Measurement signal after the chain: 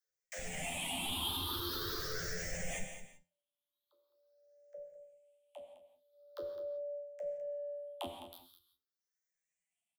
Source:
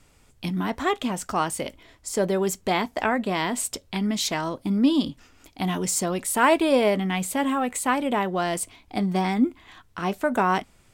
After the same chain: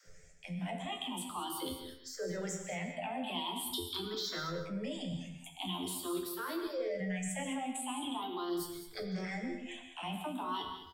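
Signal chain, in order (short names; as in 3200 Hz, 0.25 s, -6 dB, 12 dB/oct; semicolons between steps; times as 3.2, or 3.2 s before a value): moving spectral ripple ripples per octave 0.56, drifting +0.44 Hz, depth 20 dB; resonator 87 Hz, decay 0.27 s, harmonics all, mix 90%; dispersion lows, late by 71 ms, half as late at 300 Hz; reverb removal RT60 1.5 s; reverse; compressor 16:1, threshold -38 dBFS; reverse; limiter -37.5 dBFS; AGC gain up to 4 dB; bell 3300 Hz +8.5 dB 0.39 oct; on a send: echo 0.209 s -11 dB; on the sum: non-linear reverb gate 0.2 s flat, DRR 5 dB; gain +1.5 dB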